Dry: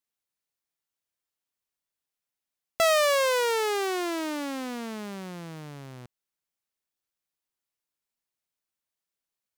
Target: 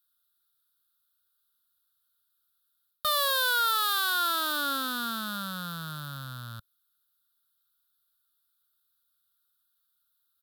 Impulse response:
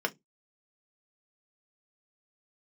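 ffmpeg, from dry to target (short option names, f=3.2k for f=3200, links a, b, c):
-af "asetrate=40517,aresample=44100,firequalizer=gain_entry='entry(100,0);entry(270,-11);entry(390,-28);entry(550,-9);entry(780,-14);entry(1400,12);entry(2100,-23);entry(3600,11);entry(6100,-9);entry(12000,12)':delay=0.05:min_phase=1,areverse,acompressor=threshold=-27dB:ratio=6,areverse,volume=4.5dB"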